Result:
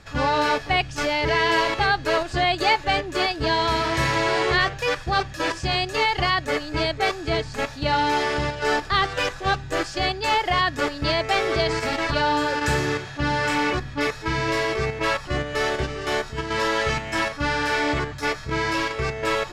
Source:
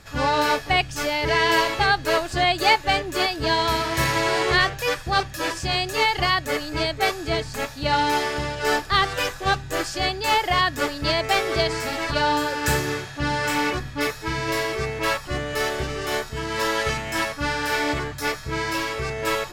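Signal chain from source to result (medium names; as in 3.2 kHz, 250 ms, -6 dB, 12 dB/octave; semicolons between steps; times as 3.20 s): in parallel at +3 dB: level held to a coarse grid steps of 14 dB; on the sum: distance through air 59 m; trim -4 dB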